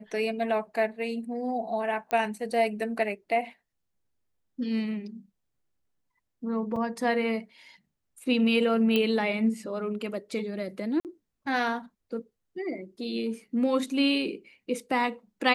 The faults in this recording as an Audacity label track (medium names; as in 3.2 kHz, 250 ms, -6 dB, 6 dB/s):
2.110000	2.110000	pop -16 dBFS
6.760000	6.760000	dropout 4.2 ms
8.960000	8.960000	pop -13 dBFS
11.000000	11.050000	dropout 48 ms